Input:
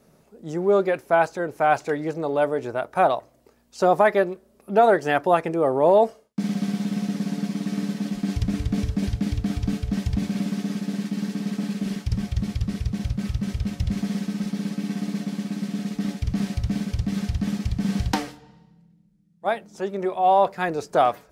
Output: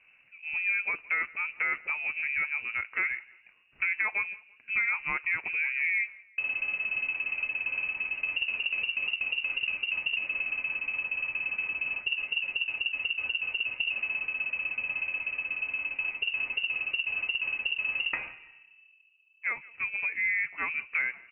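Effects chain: compressor 3:1, threshold -25 dBFS, peak gain reduction 10 dB; feedback echo 0.168 s, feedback 37%, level -23 dB; inverted band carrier 2800 Hz; gain -3.5 dB

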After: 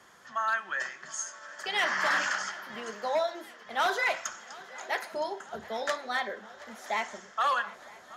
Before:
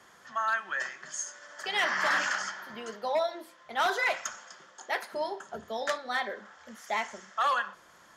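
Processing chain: swung echo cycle 0.966 s, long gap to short 3:1, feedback 64%, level -20.5 dB

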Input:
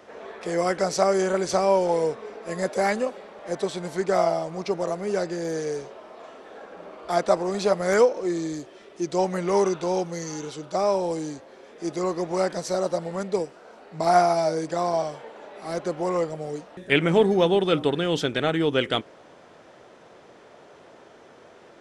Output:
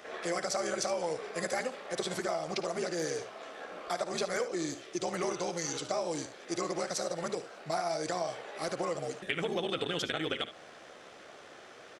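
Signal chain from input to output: tilt shelf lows -5.5 dB, about 790 Hz; notch 940 Hz, Q 8.7; compressor 6:1, threshold -29 dBFS, peak gain reduction 16 dB; granular stretch 0.55×, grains 29 ms; early reflections 56 ms -16.5 dB, 73 ms -14 dB

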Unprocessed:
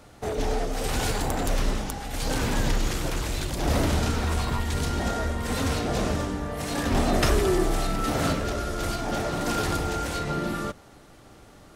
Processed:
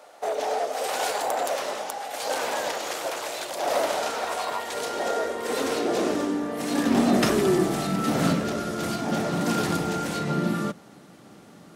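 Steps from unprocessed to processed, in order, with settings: high-pass sweep 610 Hz -> 180 Hz, 4.48–7.57

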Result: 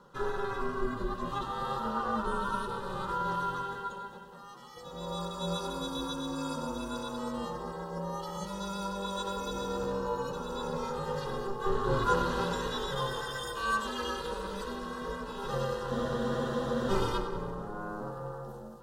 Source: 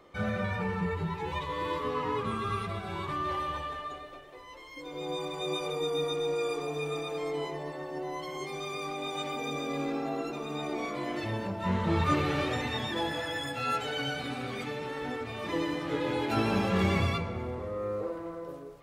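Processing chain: ring modulator 200 Hz; fixed phaser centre 450 Hz, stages 8; on a send: split-band echo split 900 Hz, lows 0.185 s, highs 95 ms, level -12.5 dB; on the sum: spectral freeze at 15.92, 0.98 s; gain +5.5 dB

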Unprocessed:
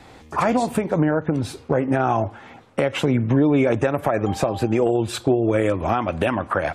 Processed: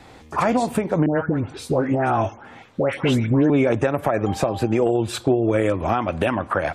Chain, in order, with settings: 1.06–3.5 dispersion highs, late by 0.149 s, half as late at 1600 Hz

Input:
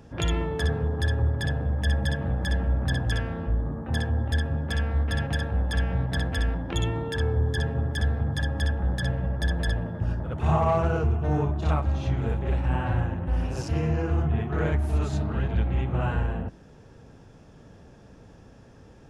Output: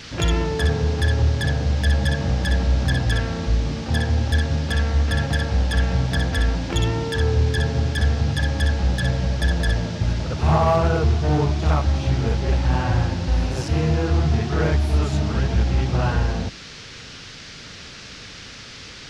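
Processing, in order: hard clip -16.5 dBFS, distortion -28 dB; band noise 1200–5700 Hz -46 dBFS; gain +5.5 dB

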